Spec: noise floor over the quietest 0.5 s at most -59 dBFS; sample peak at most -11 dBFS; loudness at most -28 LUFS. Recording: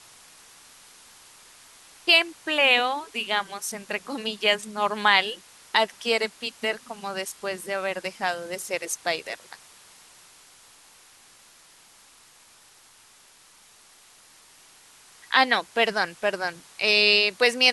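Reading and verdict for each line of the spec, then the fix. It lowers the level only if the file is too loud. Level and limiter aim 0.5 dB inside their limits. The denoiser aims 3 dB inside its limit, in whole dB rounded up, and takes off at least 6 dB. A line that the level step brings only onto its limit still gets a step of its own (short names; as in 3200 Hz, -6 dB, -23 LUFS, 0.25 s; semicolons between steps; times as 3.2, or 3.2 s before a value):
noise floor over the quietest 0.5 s -55 dBFS: fail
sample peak -4.5 dBFS: fail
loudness -23.5 LUFS: fail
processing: gain -5 dB; limiter -11.5 dBFS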